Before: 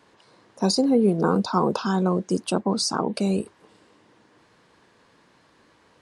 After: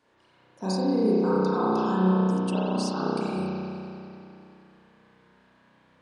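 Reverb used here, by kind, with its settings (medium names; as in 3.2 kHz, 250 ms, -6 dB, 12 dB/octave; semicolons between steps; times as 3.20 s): spring tank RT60 2.8 s, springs 32 ms, chirp 65 ms, DRR -9.5 dB; trim -12 dB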